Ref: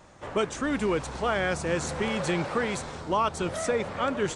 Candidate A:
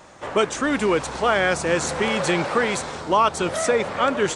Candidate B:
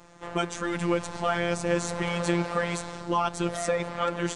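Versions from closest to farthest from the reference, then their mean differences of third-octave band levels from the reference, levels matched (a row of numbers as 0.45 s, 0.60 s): A, B; 1.5 dB, 3.5 dB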